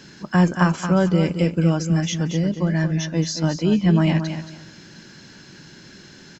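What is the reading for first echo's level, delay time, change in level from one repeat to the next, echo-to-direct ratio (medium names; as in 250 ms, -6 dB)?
-9.0 dB, 226 ms, -13.0 dB, -9.0 dB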